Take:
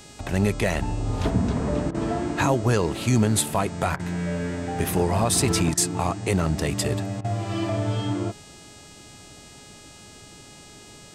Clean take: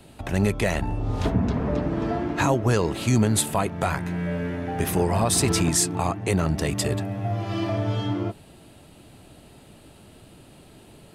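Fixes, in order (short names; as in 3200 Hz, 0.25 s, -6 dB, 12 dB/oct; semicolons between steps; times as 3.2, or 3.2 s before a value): de-hum 415.6 Hz, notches 21; interpolate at 1.91/3.96/5.74/7.21, 33 ms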